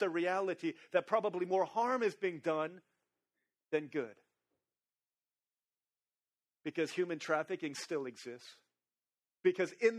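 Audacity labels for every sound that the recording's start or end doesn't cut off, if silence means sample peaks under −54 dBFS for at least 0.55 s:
3.720000	4.130000	sound
6.660000	8.540000	sound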